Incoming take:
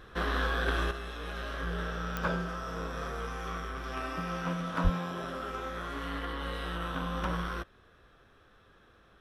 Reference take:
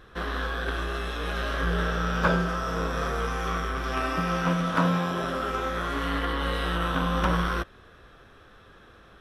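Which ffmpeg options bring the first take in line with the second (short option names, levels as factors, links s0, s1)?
-filter_complex "[0:a]adeclick=t=4,asplit=3[s0][s1][s2];[s0]afade=t=out:st=4.83:d=0.02[s3];[s1]highpass=f=140:w=0.5412,highpass=f=140:w=1.3066,afade=t=in:st=4.83:d=0.02,afade=t=out:st=4.95:d=0.02[s4];[s2]afade=t=in:st=4.95:d=0.02[s5];[s3][s4][s5]amix=inputs=3:normalize=0,asetnsamples=n=441:p=0,asendcmd='0.91 volume volume 8.5dB',volume=1"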